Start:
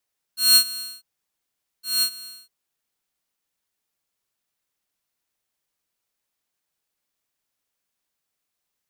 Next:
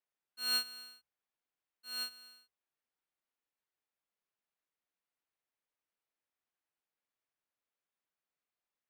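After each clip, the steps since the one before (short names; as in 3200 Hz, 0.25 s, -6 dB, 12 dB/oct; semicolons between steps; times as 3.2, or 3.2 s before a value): tone controls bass -6 dB, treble -15 dB; notches 60/120 Hz; gain -8 dB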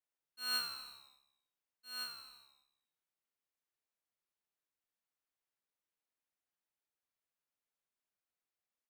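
dynamic EQ 1200 Hz, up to +6 dB, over -57 dBFS, Q 1.4; frequency-shifting echo 81 ms, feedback 57%, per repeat -69 Hz, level -8 dB; gain -4.5 dB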